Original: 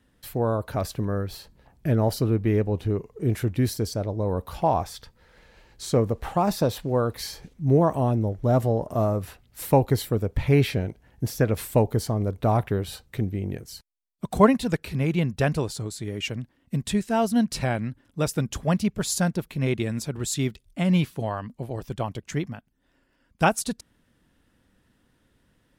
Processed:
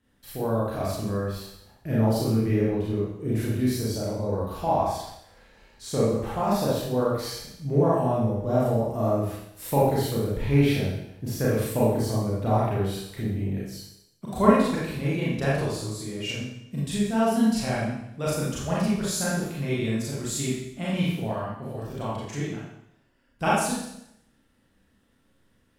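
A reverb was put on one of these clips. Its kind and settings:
four-comb reverb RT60 0.78 s, combs from 28 ms, DRR −7.5 dB
level −8.5 dB

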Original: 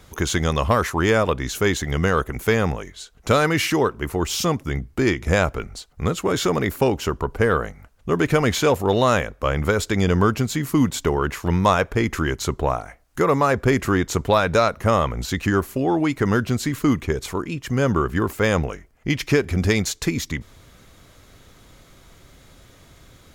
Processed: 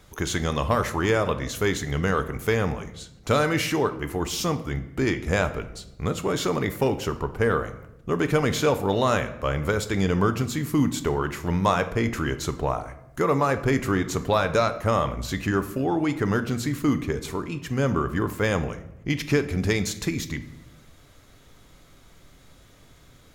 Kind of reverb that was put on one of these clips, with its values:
rectangular room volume 280 cubic metres, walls mixed, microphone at 0.37 metres
level −4.5 dB

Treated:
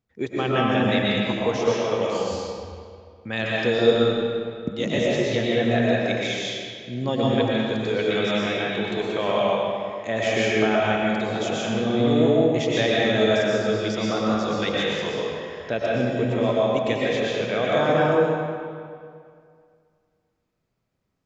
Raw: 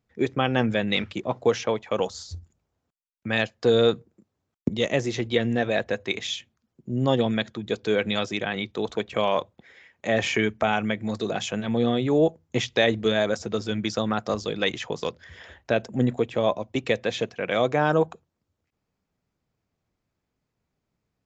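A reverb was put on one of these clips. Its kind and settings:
comb and all-pass reverb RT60 2.2 s, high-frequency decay 0.75×, pre-delay 80 ms, DRR −6 dB
level −4 dB

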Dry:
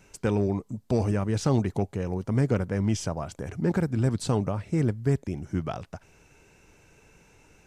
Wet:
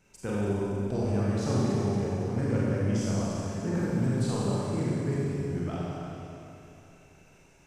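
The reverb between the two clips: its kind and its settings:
four-comb reverb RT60 3 s, combs from 31 ms, DRR −7 dB
level −9.5 dB

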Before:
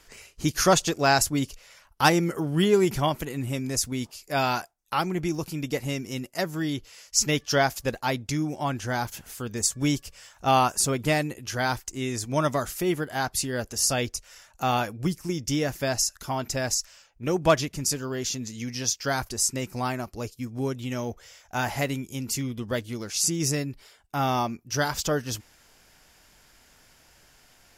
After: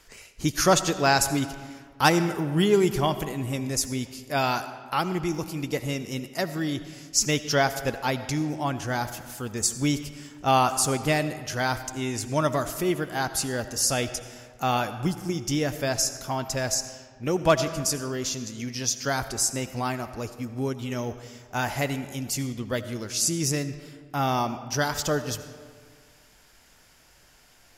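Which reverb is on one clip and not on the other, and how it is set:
comb and all-pass reverb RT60 1.8 s, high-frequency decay 0.6×, pre-delay 40 ms, DRR 11.5 dB

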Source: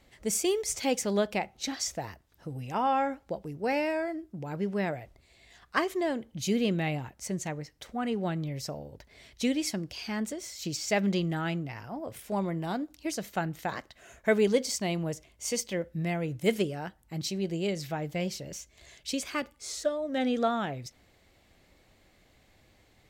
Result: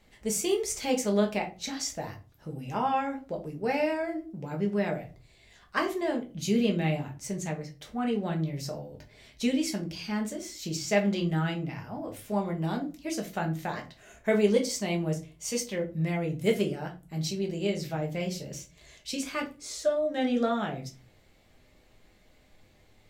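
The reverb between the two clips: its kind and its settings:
rectangular room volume 140 cubic metres, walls furnished, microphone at 1.3 metres
level −2.5 dB

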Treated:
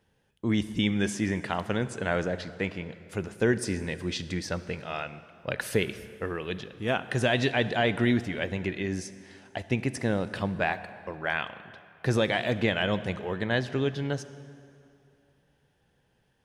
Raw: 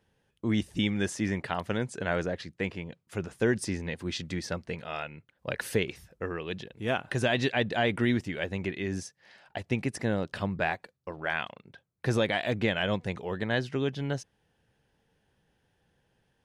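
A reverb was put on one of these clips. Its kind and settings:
dense smooth reverb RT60 2.6 s, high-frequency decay 0.75×, DRR 13 dB
level +1.5 dB

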